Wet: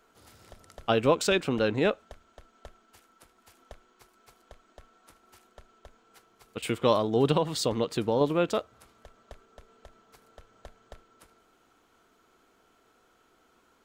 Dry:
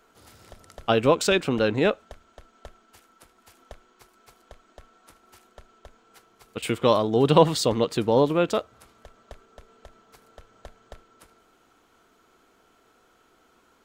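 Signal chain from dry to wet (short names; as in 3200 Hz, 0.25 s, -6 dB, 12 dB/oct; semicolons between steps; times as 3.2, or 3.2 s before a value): 7.31–8.21 compressor 6:1, threshold -18 dBFS, peak gain reduction 8.5 dB; gain -3.5 dB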